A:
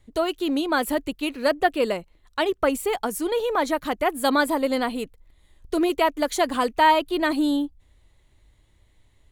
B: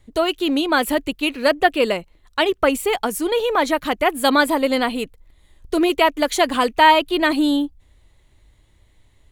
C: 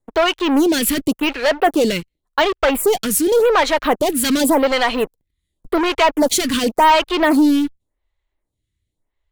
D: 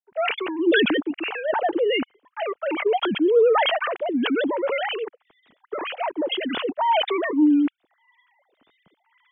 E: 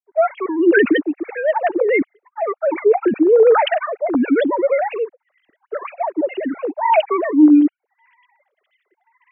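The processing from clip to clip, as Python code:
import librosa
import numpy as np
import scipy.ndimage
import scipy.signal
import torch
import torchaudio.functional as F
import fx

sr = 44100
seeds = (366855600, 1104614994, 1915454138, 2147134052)

y1 = fx.dynamic_eq(x, sr, hz=2700.0, q=1.3, threshold_db=-41.0, ratio=4.0, max_db=5)
y1 = y1 * librosa.db_to_amplitude(4.0)
y2 = fx.leveller(y1, sr, passes=5)
y2 = fx.stagger_phaser(y2, sr, hz=0.89)
y2 = y2 * librosa.db_to_amplitude(-6.5)
y3 = fx.sine_speech(y2, sr)
y3 = fx.sustainer(y3, sr, db_per_s=22.0)
y3 = y3 * librosa.db_to_amplitude(-9.0)
y4 = fx.sine_speech(y3, sr)
y4 = y4 * librosa.db_to_amplitude(6.0)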